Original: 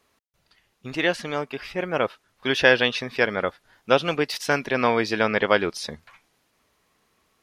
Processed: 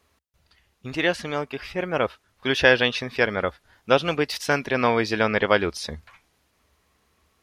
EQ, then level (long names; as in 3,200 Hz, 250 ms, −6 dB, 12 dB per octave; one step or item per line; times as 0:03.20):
parametric band 68 Hz +15 dB 0.71 octaves
0.0 dB